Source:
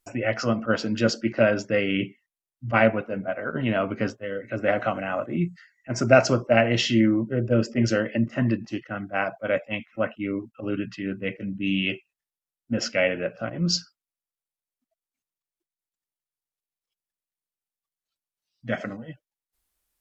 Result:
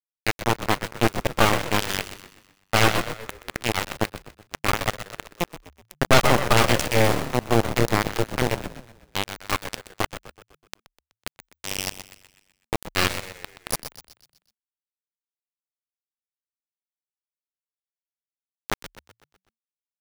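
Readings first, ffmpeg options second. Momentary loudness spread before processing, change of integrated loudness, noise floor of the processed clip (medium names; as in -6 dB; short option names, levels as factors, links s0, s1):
11 LU, +0.5 dB, under -85 dBFS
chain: -filter_complex "[0:a]aeval=exprs='val(0)*gte(abs(val(0)),0.141)':c=same,asplit=7[s0][s1][s2][s3][s4][s5][s6];[s1]adelay=125,afreqshift=-38,volume=0.501[s7];[s2]adelay=250,afreqshift=-76,volume=0.26[s8];[s3]adelay=375,afreqshift=-114,volume=0.135[s9];[s4]adelay=500,afreqshift=-152,volume=0.0708[s10];[s5]adelay=625,afreqshift=-190,volume=0.0367[s11];[s6]adelay=750,afreqshift=-228,volume=0.0191[s12];[s0][s7][s8][s9][s10][s11][s12]amix=inputs=7:normalize=0,aeval=exprs='0.794*(cos(1*acos(clip(val(0)/0.794,-1,1)))-cos(1*PI/2))+0.355*(cos(8*acos(clip(val(0)/0.794,-1,1)))-cos(8*PI/2))':c=same,volume=0.531"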